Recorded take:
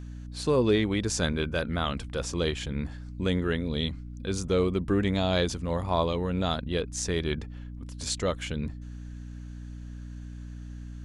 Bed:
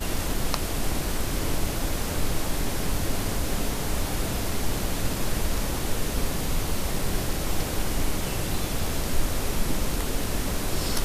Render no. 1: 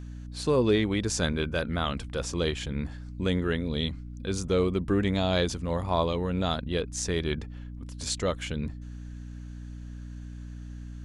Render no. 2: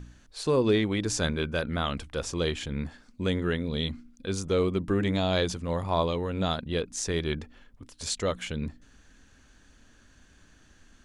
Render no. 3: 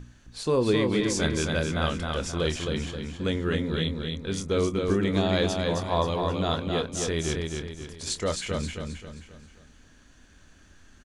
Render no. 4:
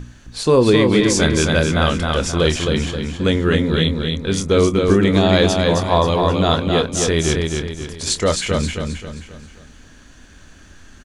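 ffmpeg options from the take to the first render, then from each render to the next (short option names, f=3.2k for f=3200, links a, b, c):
-af anull
-af "bandreject=f=60:t=h:w=4,bandreject=f=120:t=h:w=4,bandreject=f=180:t=h:w=4,bandreject=f=240:t=h:w=4,bandreject=f=300:t=h:w=4"
-filter_complex "[0:a]asplit=2[a][b];[b]adelay=25,volume=-11.5dB[c];[a][c]amix=inputs=2:normalize=0,aecho=1:1:265|530|795|1060|1325:0.631|0.265|0.111|0.0467|0.0196"
-af "volume=10.5dB,alimiter=limit=-3dB:level=0:latency=1"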